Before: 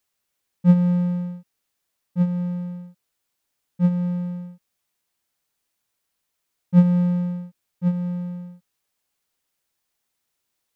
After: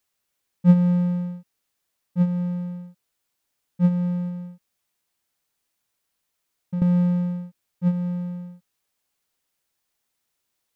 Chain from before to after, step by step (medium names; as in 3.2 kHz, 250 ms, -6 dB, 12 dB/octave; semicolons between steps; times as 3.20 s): 4.28–6.82 s: compression 5:1, threshold -27 dBFS, peak gain reduction 16 dB